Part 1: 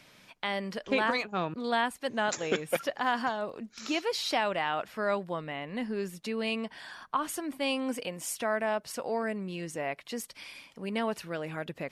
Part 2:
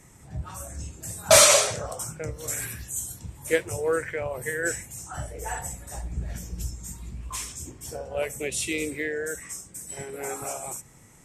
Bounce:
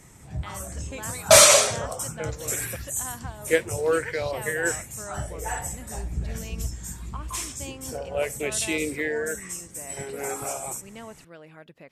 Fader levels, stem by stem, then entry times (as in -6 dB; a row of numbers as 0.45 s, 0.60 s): -10.5 dB, +2.0 dB; 0.00 s, 0.00 s